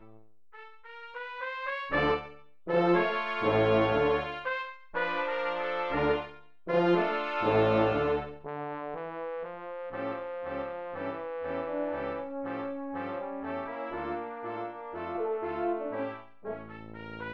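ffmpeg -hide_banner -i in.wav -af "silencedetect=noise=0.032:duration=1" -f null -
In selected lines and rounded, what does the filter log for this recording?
silence_start: 0.00
silence_end: 1.17 | silence_duration: 1.17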